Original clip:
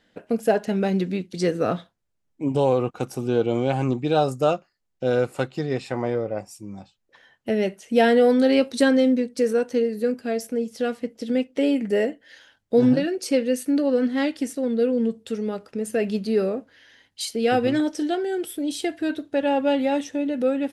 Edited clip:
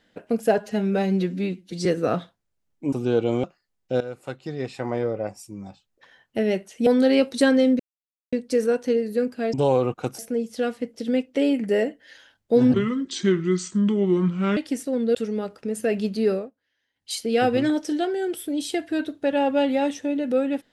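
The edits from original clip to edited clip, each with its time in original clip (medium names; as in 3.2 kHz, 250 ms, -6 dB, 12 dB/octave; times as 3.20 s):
0.58–1.43 s: stretch 1.5×
2.50–3.15 s: move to 10.40 s
3.66–4.55 s: delete
5.12–6.20 s: fade in, from -15.5 dB
7.98–8.26 s: delete
9.19 s: insert silence 0.53 s
12.95–14.27 s: speed 72%
14.85–15.25 s: delete
16.42–17.24 s: dip -23 dB, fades 0.19 s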